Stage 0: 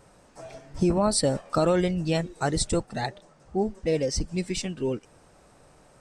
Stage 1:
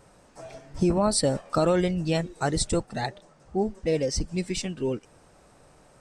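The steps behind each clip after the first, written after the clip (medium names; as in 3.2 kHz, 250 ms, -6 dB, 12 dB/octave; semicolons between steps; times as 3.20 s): no audible change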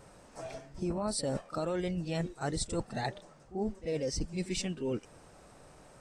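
reverse; compression 6:1, threshold -31 dBFS, peak gain reduction 12.5 dB; reverse; pre-echo 42 ms -14.5 dB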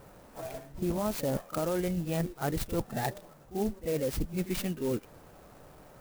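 distance through air 72 m; sampling jitter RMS 0.054 ms; trim +3 dB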